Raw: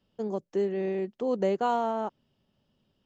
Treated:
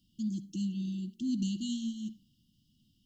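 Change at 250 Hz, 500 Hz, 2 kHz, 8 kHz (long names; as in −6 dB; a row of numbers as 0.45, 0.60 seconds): +1.5 dB, below −30 dB, below −15 dB, can't be measured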